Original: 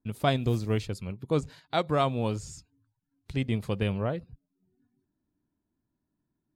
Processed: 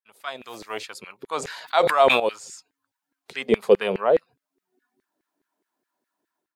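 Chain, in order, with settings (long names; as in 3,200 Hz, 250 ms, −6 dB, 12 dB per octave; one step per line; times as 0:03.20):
high-pass filter 89 Hz
automatic gain control gain up to 16 dB
0:03.31–0:04.19: hollow resonant body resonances 210/410 Hz, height 12 dB, ringing for 35 ms
auto-filter high-pass saw down 4.8 Hz 390–2,000 Hz
0:01.37–0:02.20: level that may fall only so fast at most 44 dB per second
level −7.5 dB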